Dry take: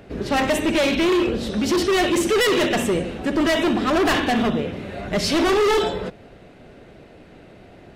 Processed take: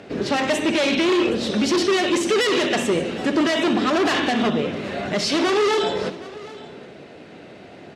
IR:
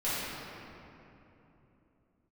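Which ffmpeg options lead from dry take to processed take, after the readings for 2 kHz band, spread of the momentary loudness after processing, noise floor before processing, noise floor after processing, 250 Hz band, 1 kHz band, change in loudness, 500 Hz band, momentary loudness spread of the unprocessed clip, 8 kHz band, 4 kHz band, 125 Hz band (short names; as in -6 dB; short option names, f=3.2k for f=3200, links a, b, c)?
0.0 dB, 10 LU, -47 dBFS, -42 dBFS, 0.0 dB, -0.5 dB, -0.5 dB, -0.5 dB, 8 LU, -0.5 dB, +1.5 dB, -2.5 dB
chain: -filter_complex "[0:a]highshelf=f=4.3k:g=7,bandreject=f=60:t=h:w=6,bandreject=f=120:t=h:w=6,bandreject=f=180:t=h:w=6,alimiter=limit=-17dB:level=0:latency=1:release=304,highpass=140,lowpass=6.4k,aecho=1:1:768:0.112,asplit=2[a][b];[1:a]atrim=start_sample=2205,asetrate=79380,aresample=44100[c];[b][c]afir=irnorm=-1:irlink=0,volume=-23.5dB[d];[a][d]amix=inputs=2:normalize=0,volume=4dB"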